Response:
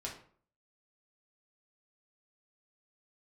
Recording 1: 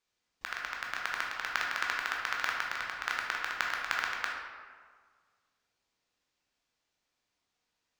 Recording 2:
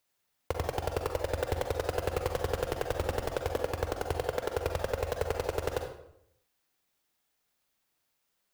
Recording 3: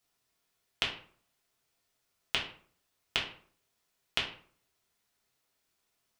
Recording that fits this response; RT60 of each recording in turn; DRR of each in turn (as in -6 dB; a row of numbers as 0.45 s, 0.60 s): 3; 1.7 s, 0.75 s, 0.50 s; -2.0 dB, 3.5 dB, -3.5 dB